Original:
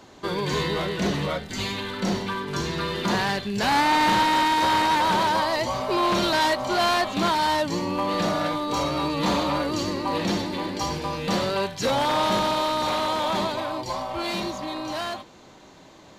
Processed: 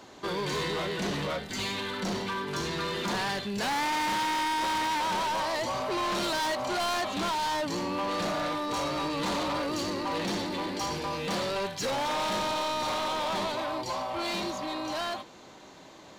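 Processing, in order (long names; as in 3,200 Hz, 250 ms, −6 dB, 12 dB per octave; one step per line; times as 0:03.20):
low-shelf EQ 160 Hz −7.5 dB
soft clipping −27 dBFS, distortion −9 dB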